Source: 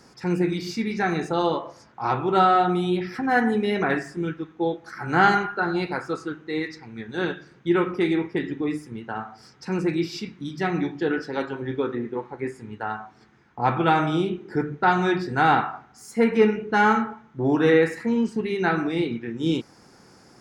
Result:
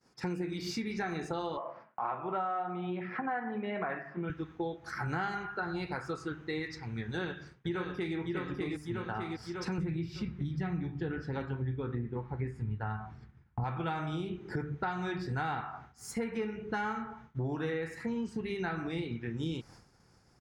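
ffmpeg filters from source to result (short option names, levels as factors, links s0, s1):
-filter_complex "[0:a]asettb=1/sr,asplit=3[s0][s1][s2];[s0]atrim=end=1.574[s3];[s1]atrim=start=1.57:end=4.3,asetpts=PTS-STARTPTS,afade=t=in:d=0.004:c=qsin,afade=t=out:st=2.726:d=0.004:c=qsin,highpass=f=170:w=0.5412,highpass=f=170:w=1.3066,equalizer=f=290:t=q:w=4:g=-5,equalizer=f=420:t=q:w=4:g=-4,equalizer=f=630:t=q:w=4:g=9,equalizer=f=1100:t=q:w=4:g=6,lowpass=f=2600:w=0.5412,lowpass=f=2600:w=1.3066[s4];[s2]atrim=start=4.296[s5];[s3][s4]acrossfade=d=0.004:c1=hsin:c2=qsin[s6];[s6][s5]acrossfade=d=0.004:c1=qsin:c2=hsin,asplit=2[s7][s8];[s8]afade=t=in:st=7.04:d=0.01,afade=t=out:st=8.16:d=0.01,aecho=0:1:600|1200|1800|2400|3000|3600:0.707946|0.318576|0.143359|0.0645116|0.0290302|0.0130636[s9];[s7][s9]amix=inputs=2:normalize=0,asettb=1/sr,asplit=3[s10][s11][s12];[s10]atrim=end=9.784[s13];[s11]atrim=start=9.78:end=13.64,asetpts=PTS-STARTPTS,afade=t=in:d=0.004:c=qsin,afade=t=out:st=3.856:d=0.004:c=qsin,bass=f=250:g=11,treble=f=4000:g=-8[s14];[s12]atrim=start=13.636[s15];[s13][s14]acrossfade=d=0.004:c1=hsin:c2=qsin[s16];[s16][s15]acrossfade=d=0.004:c1=qsin:c2=hsin,agate=range=0.0224:threshold=0.00794:ratio=3:detection=peak,asubboost=boost=5:cutoff=110,acompressor=threshold=0.0224:ratio=6"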